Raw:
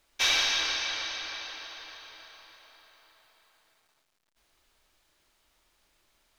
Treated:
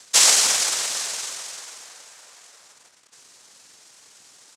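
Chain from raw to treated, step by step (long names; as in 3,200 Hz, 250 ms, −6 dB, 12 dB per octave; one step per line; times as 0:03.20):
dynamic equaliser 3,600 Hz, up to −6 dB, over −41 dBFS, Q 2.4
cochlear-implant simulation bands 3
upward compression, threshold −53 dBFS
bass and treble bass −4 dB, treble +10 dB
tempo change 1.4×
on a send: delay with a band-pass on its return 265 ms, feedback 73%, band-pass 1,500 Hz, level −21 dB
on the sum: level +7 dB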